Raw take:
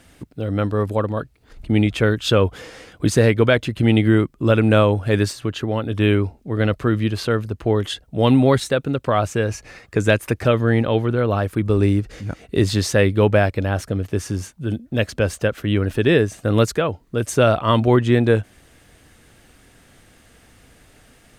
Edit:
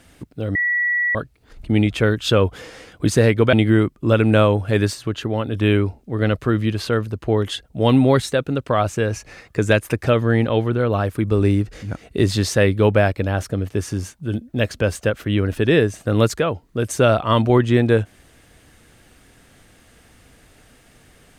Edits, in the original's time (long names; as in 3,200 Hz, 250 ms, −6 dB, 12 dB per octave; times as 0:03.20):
0:00.55–0:01.15: beep over 1,940 Hz −16.5 dBFS
0:03.53–0:03.91: remove